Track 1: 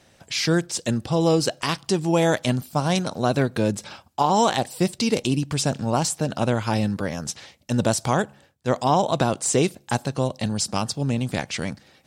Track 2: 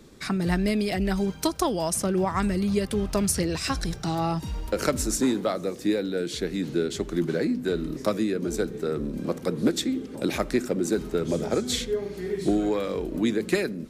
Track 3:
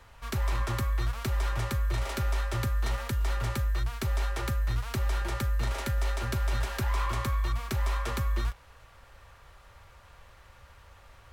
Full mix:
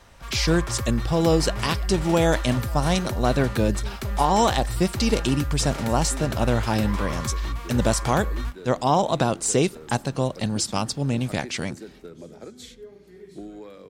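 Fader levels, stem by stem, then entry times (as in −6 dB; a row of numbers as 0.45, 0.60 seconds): −0.5, −15.5, +0.5 decibels; 0.00, 0.90, 0.00 seconds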